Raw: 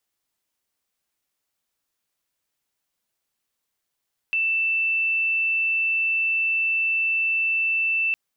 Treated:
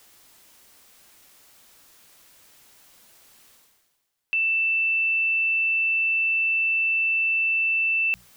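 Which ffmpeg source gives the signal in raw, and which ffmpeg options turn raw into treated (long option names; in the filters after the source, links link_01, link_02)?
-f lavfi -i "sine=frequency=2660:duration=3.81:sample_rate=44100,volume=-1.44dB"
-af "bandreject=frequency=60:width_type=h:width=6,bandreject=frequency=120:width_type=h:width=6,bandreject=frequency=180:width_type=h:width=6,areverse,acompressor=mode=upward:threshold=-33dB:ratio=2.5,areverse"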